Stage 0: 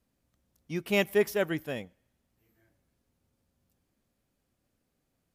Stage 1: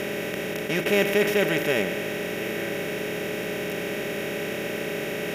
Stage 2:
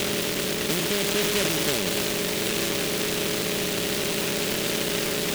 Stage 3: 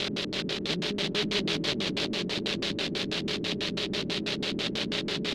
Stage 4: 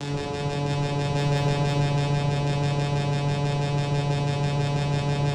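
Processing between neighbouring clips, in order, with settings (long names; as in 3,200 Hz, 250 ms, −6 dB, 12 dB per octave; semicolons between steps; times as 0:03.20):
compressor on every frequency bin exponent 0.2; reversed playback; upward compression, threshold −25 dBFS; reversed playback
brickwall limiter −19 dBFS, peak gain reduction 10.5 dB; transient designer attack +2 dB, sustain +8 dB; short delay modulated by noise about 2,800 Hz, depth 0.28 ms; level +3 dB
auto-filter low-pass square 6.1 Hz 270–4,000 Hz; on a send: repeating echo 340 ms, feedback 16%, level −6 dB; on the sum: level −6.5 dB
channel vocoder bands 4, saw 143 Hz; asymmetric clip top −28 dBFS; rectangular room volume 130 cubic metres, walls hard, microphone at 0.79 metres; level +2 dB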